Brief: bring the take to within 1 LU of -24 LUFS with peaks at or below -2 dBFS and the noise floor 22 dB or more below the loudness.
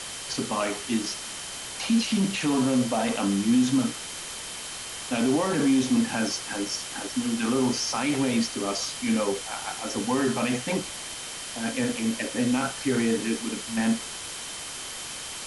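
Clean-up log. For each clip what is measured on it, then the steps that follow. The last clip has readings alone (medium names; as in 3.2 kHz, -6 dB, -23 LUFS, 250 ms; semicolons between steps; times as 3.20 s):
steady tone 3.1 kHz; tone level -44 dBFS; noise floor -37 dBFS; noise floor target -49 dBFS; loudness -27.0 LUFS; peak level -13.0 dBFS; loudness target -24.0 LUFS
-> band-stop 3.1 kHz, Q 30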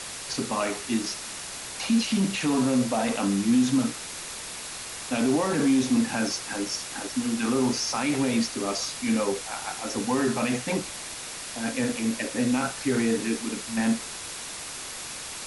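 steady tone not found; noise floor -38 dBFS; noise floor target -49 dBFS
-> noise print and reduce 11 dB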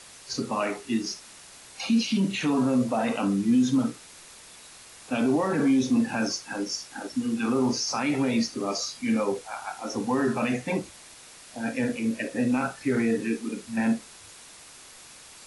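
noise floor -48 dBFS; noise floor target -49 dBFS
-> noise print and reduce 6 dB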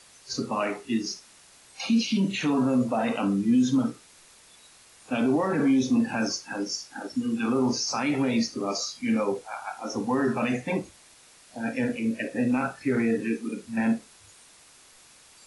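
noise floor -54 dBFS; loudness -27.0 LUFS; peak level -14.0 dBFS; loudness target -24.0 LUFS
-> trim +3 dB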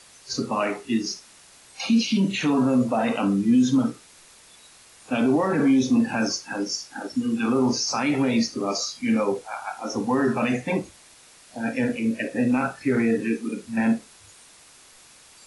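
loudness -24.0 LUFS; peak level -11.0 dBFS; noise floor -51 dBFS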